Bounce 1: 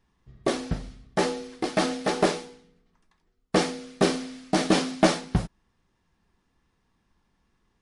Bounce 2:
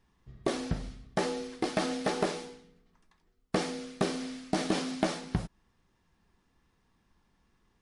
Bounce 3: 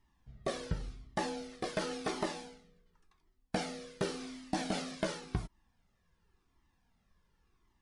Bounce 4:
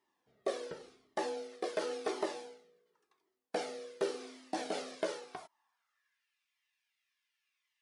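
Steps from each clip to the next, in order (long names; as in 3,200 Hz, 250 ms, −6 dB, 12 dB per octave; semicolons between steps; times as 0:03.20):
downward compressor 5 to 1, threshold −26 dBFS, peak gain reduction 12 dB
flanger whose copies keep moving one way falling 0.91 Hz
high-pass filter sweep 420 Hz → 2,400 Hz, 0:05.11–0:06.30; level −3.5 dB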